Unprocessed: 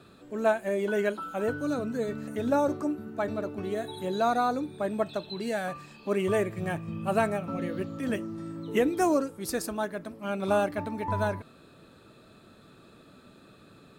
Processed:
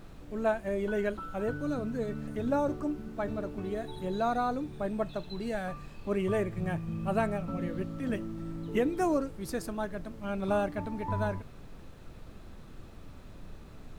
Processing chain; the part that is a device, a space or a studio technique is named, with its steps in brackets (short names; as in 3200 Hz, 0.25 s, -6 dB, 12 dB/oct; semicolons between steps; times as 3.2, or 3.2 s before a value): car interior (bell 140 Hz +7 dB 0.94 oct; high shelf 4300 Hz -6 dB; brown noise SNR 12 dB); gain -4 dB